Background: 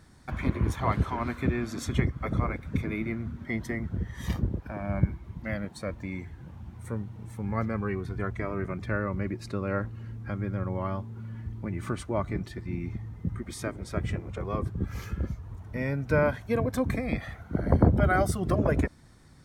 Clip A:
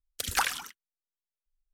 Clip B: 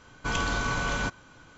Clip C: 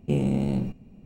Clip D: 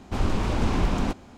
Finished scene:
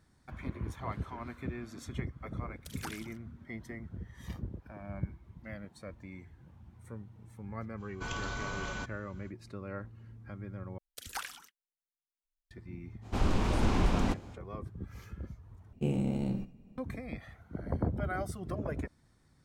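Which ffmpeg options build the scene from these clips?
-filter_complex "[1:a]asplit=2[a][b];[0:a]volume=-11.5dB[c];[3:a]aecho=1:1:76:0.168[d];[c]asplit=3[e][f][g];[e]atrim=end=10.784[h];[b]atrim=end=1.73,asetpts=PTS-STARTPTS,volume=-12.5dB[i];[f]atrim=start=12.506:end=15.734[j];[d]atrim=end=1.05,asetpts=PTS-STARTPTS,volume=-7dB[k];[g]atrim=start=16.776[l];[a]atrim=end=1.73,asetpts=PTS-STARTPTS,volume=-16.5dB,afade=t=in:d=0.004:c=hsin,afade=t=out:st=1.726:d=0.004:c=hsin,adelay=2460[m];[2:a]atrim=end=1.57,asetpts=PTS-STARTPTS,volume=-10dB,afade=t=in:d=0.05,afade=t=out:st=1.52:d=0.05,adelay=7760[n];[4:a]atrim=end=1.37,asetpts=PTS-STARTPTS,volume=-4dB,afade=t=in:d=0.05,afade=t=out:st=1.32:d=0.05,adelay=13010[o];[h][i]acrossfade=d=0.004:c1=hsin:c2=hsin[p];[p][j]acrossfade=d=0.004:c1=hsin:c2=hsin[q];[q][k]acrossfade=d=0.004:c1=hsin:c2=hsin[r];[r][l]acrossfade=d=0.004:c1=hsin:c2=hsin[s];[s][m][n][o]amix=inputs=4:normalize=0"

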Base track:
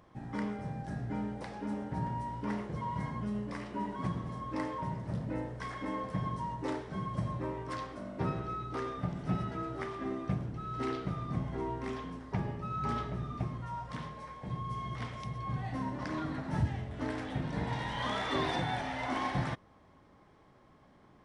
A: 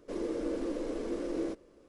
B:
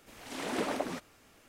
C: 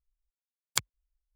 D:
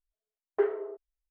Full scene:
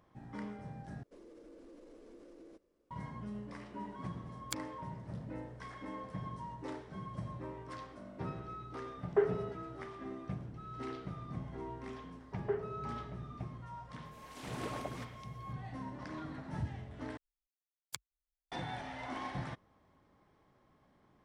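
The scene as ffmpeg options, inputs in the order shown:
-filter_complex "[3:a]asplit=2[a][b];[4:a]asplit=2[c][d];[0:a]volume=-7.5dB[e];[1:a]alimiter=level_in=7.5dB:limit=-24dB:level=0:latency=1:release=53,volume=-7.5dB[f];[e]asplit=3[g][h][i];[g]atrim=end=1.034[j];[f]atrim=end=1.88,asetpts=PTS-STARTPTS,volume=-16.5dB[k];[h]atrim=start=2.906:end=17.174[l];[b]atrim=end=1.35,asetpts=PTS-STARTPTS,volume=-15dB[m];[i]atrim=start=18.516[n];[a]atrim=end=1.35,asetpts=PTS-STARTPTS,volume=-12.5dB,afade=t=in:d=0.004:c=hsin,afade=t=out:st=1.346:d=0.004:c=hsin,adelay=3750[o];[c]atrim=end=1.3,asetpts=PTS-STARTPTS,volume=-2.5dB,afade=t=in:d=0.004:c=hsin,afade=t=out:st=1.296:d=0.004:c=hsin,adelay=378378S[p];[d]atrim=end=1.3,asetpts=PTS-STARTPTS,volume=-9dB,afade=t=in:d=0.004:c=hsin,afade=t=out:st=1.296:d=0.004:c=hsin,adelay=11900[q];[2:a]atrim=end=1.48,asetpts=PTS-STARTPTS,volume=-9dB,afade=t=in:d=0.004:c=hsin,afade=t=out:st=1.476:d=0.004:c=hsin,adelay=14050[r];[j][k]acrossfade=d=0.004:c1=hsin:c2=hsin[s];[s][l]acrossfade=d=0.004:c1=hsin:c2=hsin[t];[t][m]acrossfade=d=0.004:c1=hsin:c2=hsin[u];[u][n]acrossfade=d=0.004:c1=hsin:c2=hsin[v];[v][o][p][q][r]amix=inputs=5:normalize=0"

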